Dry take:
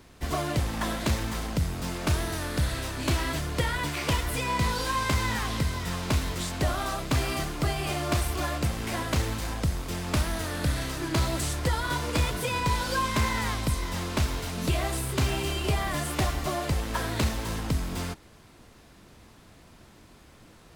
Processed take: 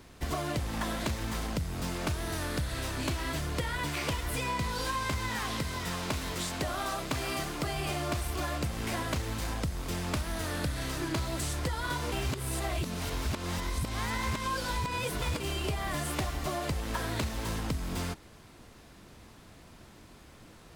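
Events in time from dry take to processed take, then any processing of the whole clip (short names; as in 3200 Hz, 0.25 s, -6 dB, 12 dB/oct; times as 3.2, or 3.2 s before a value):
5.28–7.73 low shelf 130 Hz -8 dB
12.12–15.4 reverse
whole clip: compressor, threshold -29 dBFS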